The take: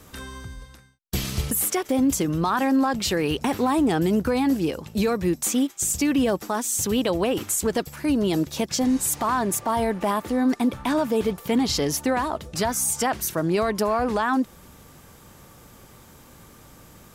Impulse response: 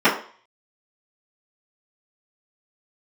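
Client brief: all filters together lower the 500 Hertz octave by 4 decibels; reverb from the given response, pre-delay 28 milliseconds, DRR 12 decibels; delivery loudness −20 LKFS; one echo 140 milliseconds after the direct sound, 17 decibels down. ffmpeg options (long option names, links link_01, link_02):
-filter_complex "[0:a]equalizer=frequency=500:width_type=o:gain=-5,aecho=1:1:140:0.141,asplit=2[link_01][link_02];[1:a]atrim=start_sample=2205,adelay=28[link_03];[link_02][link_03]afir=irnorm=-1:irlink=0,volume=-35dB[link_04];[link_01][link_04]amix=inputs=2:normalize=0,volume=4.5dB"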